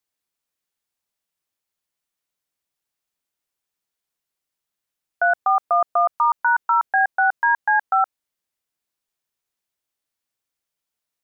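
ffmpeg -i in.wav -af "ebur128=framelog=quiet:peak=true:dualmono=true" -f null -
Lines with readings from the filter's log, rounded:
Integrated loudness:
  I:         -16.5 LUFS
  Threshold: -26.5 LUFS
Loudness range:
  LRA:         9.4 LU
  Threshold: -39.1 LUFS
  LRA low:   -25.9 LUFS
  LRA high:  -16.5 LUFS
True peak:
  Peak:      -10.4 dBFS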